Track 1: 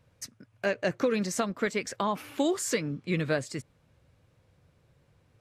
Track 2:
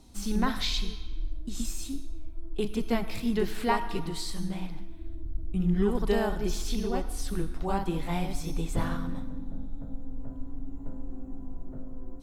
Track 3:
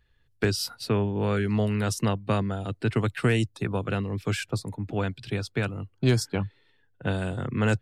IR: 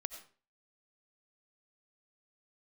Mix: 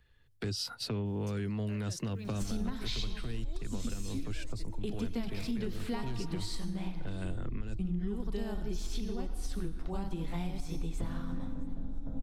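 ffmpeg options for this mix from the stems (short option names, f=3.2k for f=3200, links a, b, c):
-filter_complex "[0:a]acompressor=threshold=-42dB:ratio=2,alimiter=level_in=8dB:limit=-24dB:level=0:latency=1,volume=-8dB,acrusher=bits=10:mix=0:aa=0.000001,adelay=1050,volume=-2dB,asplit=2[a][b];[b]volume=-14dB[c];[1:a]highshelf=f=7.3k:g=-8,acrossover=split=320|3000[d][e][f];[e]acompressor=threshold=-43dB:ratio=2.5[g];[d][g][f]amix=inputs=3:normalize=0,adelay=2250,volume=2dB,asplit=3[h][i][j];[i]volume=-5.5dB[k];[j]volume=-22.5dB[l];[2:a]asoftclip=type=tanh:threshold=-18dB,acrossover=split=6400[m][n];[n]acompressor=threshold=-47dB:ratio=4:attack=1:release=60[o];[m][o]amix=inputs=2:normalize=0,volume=0.5dB[p];[a][p]amix=inputs=2:normalize=0,acrossover=split=360|3000[q][r][s];[r]acompressor=threshold=-36dB:ratio=6[t];[q][t][s]amix=inputs=3:normalize=0,alimiter=level_in=1.5dB:limit=-24dB:level=0:latency=1:release=119,volume=-1.5dB,volume=0dB[u];[3:a]atrim=start_sample=2205[v];[k][v]afir=irnorm=-1:irlink=0[w];[c][l]amix=inputs=2:normalize=0,aecho=0:1:664|1328|1992|2656|3320:1|0.33|0.109|0.0359|0.0119[x];[h][u][w][x]amix=inputs=4:normalize=0,acompressor=threshold=-31dB:ratio=6"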